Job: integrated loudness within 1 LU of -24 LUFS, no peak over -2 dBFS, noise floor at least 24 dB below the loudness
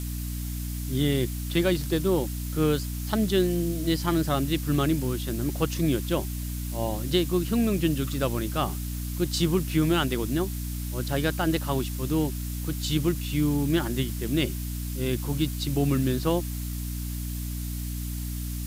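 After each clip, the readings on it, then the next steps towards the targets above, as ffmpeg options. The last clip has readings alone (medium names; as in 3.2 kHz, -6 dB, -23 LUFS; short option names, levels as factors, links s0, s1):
hum 60 Hz; highest harmonic 300 Hz; hum level -30 dBFS; noise floor -32 dBFS; noise floor target -51 dBFS; loudness -27.0 LUFS; peak level -10.0 dBFS; loudness target -24.0 LUFS
-> -af "bandreject=f=60:t=h:w=6,bandreject=f=120:t=h:w=6,bandreject=f=180:t=h:w=6,bandreject=f=240:t=h:w=6,bandreject=f=300:t=h:w=6"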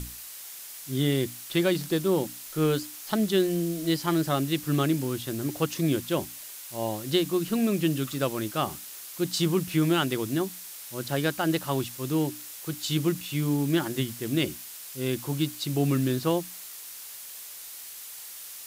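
hum not found; noise floor -42 dBFS; noise floor target -52 dBFS
-> -af "afftdn=nr=10:nf=-42"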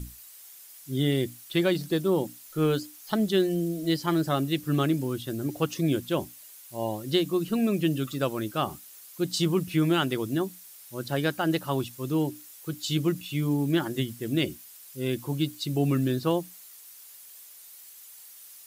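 noise floor -49 dBFS; noise floor target -52 dBFS
-> -af "afftdn=nr=6:nf=-49"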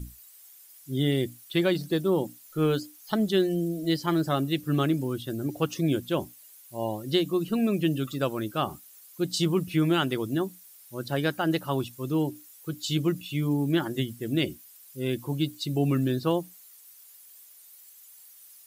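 noise floor -52 dBFS; loudness -28.0 LUFS; peak level -11.0 dBFS; loudness target -24.0 LUFS
-> -af "volume=1.58"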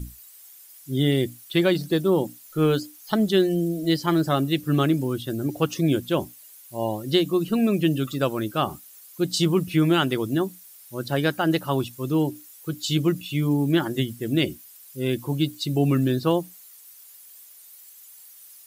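loudness -24.0 LUFS; peak level -7.0 dBFS; noise floor -48 dBFS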